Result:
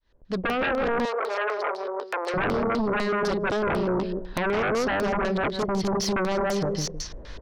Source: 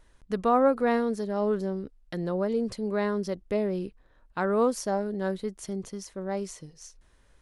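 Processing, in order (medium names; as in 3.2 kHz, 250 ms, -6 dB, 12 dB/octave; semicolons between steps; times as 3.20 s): fade-in on the opening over 1.74 s; on a send: feedback delay 158 ms, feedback 20%, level -3.5 dB; on the sum: compression 20:1, threshold -35 dBFS, peak gain reduction 17.5 dB; peaking EQ 8.7 kHz -10 dB 0.58 oct; LFO low-pass square 4 Hz 560–4500 Hz; sine folder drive 15 dB, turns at -21.5 dBFS; 1.05–2.34 s: steep high-pass 420 Hz 36 dB/octave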